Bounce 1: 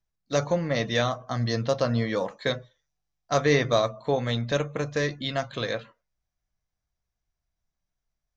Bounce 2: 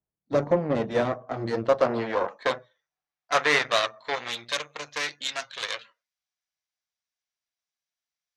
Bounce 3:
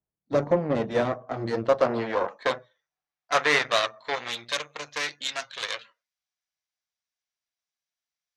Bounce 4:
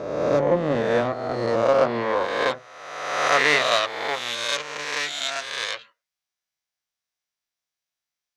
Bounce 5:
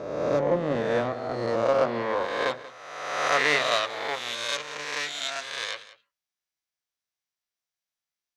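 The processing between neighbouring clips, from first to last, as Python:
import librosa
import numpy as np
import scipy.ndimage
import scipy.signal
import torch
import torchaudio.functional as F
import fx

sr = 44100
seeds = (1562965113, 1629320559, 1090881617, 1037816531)

y1 = fx.cheby_harmonics(x, sr, harmonics=(3, 8), levels_db=(-18, -18), full_scale_db=-9.0)
y1 = fx.filter_sweep_bandpass(y1, sr, from_hz=330.0, to_hz=3700.0, start_s=0.79, end_s=4.5, q=0.71)
y1 = y1 * librosa.db_to_amplitude(6.5)
y2 = y1
y3 = fx.spec_swells(y2, sr, rise_s=1.37)
y4 = y3 + 10.0 ** (-17.0 / 20.0) * np.pad(y3, (int(185 * sr / 1000.0), 0))[:len(y3)]
y4 = y4 * librosa.db_to_amplitude(-4.0)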